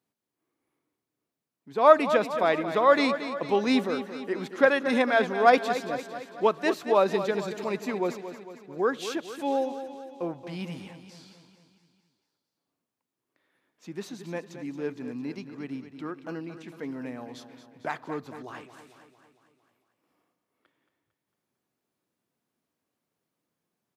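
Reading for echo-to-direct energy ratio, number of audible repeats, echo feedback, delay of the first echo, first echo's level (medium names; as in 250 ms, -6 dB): -9.5 dB, 5, 56%, 226 ms, -11.0 dB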